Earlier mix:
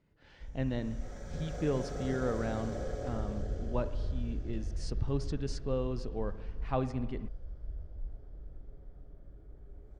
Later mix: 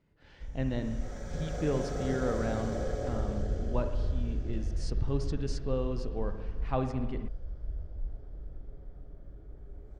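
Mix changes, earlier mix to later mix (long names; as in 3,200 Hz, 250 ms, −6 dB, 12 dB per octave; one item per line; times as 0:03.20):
speech: send +6.0 dB
background +4.0 dB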